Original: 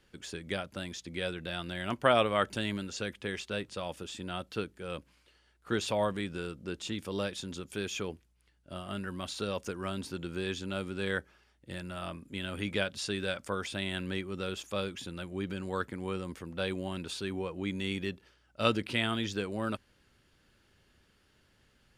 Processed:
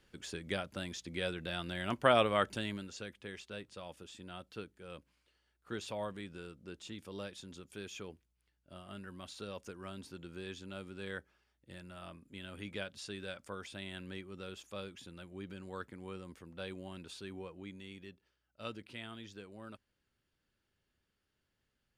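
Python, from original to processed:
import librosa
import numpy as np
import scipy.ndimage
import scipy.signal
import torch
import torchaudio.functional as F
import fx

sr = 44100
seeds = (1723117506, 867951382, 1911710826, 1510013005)

y = fx.gain(x, sr, db=fx.line((2.36, -2.0), (3.12, -10.0), (17.46, -10.0), (17.87, -16.0)))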